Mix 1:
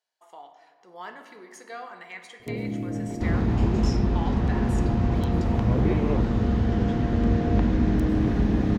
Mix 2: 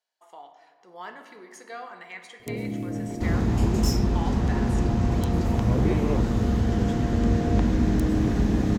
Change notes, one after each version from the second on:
first sound: add tone controls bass -1 dB, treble +9 dB; second sound: remove LPF 3900 Hz 12 dB/oct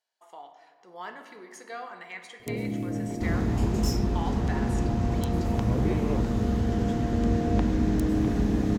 second sound -3.5 dB

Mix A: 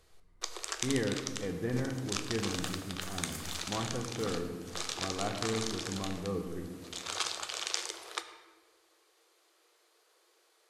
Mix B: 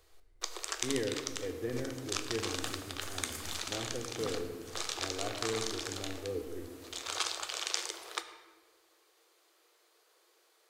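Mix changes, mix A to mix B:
speech: add fixed phaser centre 430 Hz, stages 4; first sound: remove brick-wall FIR low-pass 13000 Hz

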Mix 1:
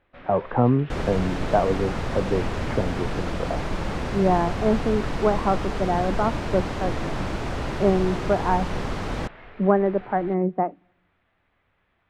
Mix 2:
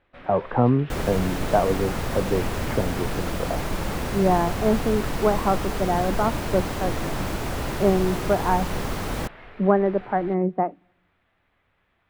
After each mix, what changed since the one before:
master: remove air absorption 83 m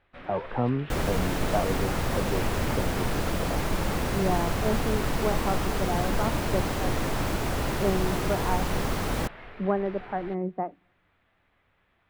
speech -7.5 dB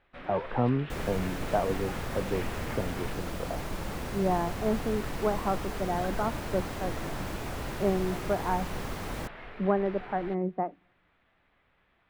first sound: add bell 93 Hz -8 dB 0.23 oct; second sound -8.0 dB

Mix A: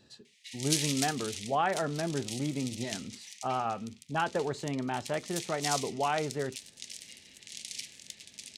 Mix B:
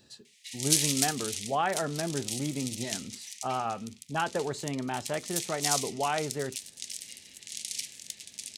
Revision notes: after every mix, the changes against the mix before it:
master: add high shelf 6800 Hz +11.5 dB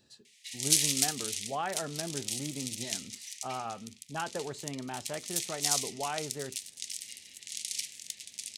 speech -6.0 dB

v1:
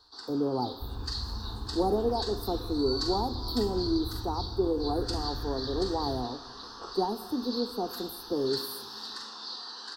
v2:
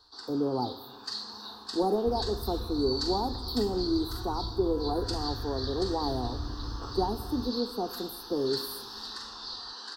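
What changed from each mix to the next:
second sound: entry +1.25 s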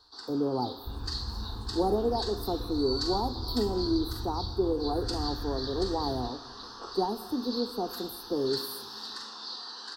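second sound: entry -1.20 s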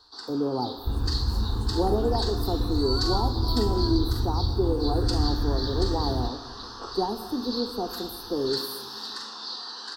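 speech: send +6.0 dB; first sound +4.0 dB; second sound +11.0 dB

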